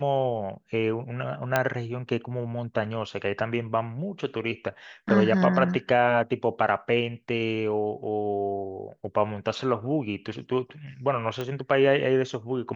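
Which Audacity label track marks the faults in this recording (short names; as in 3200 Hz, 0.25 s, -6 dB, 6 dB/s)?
1.560000	1.560000	pop -8 dBFS
11.410000	11.410000	pop -18 dBFS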